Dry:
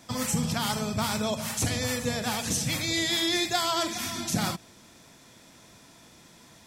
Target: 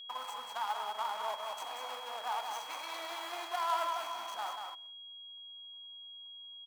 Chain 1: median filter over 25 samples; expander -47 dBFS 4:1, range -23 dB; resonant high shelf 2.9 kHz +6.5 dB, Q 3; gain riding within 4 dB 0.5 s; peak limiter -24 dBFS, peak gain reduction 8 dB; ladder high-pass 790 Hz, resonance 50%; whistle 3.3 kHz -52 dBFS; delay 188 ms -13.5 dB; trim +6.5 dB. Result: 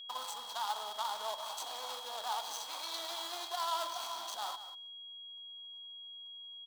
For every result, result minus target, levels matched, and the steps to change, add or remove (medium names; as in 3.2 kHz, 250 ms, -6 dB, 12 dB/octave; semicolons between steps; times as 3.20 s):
8 kHz band +6.5 dB; echo-to-direct -8.5 dB
remove: resonant high shelf 2.9 kHz +6.5 dB, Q 3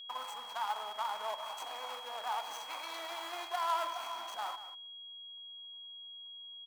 echo-to-direct -8.5 dB
change: delay 188 ms -5 dB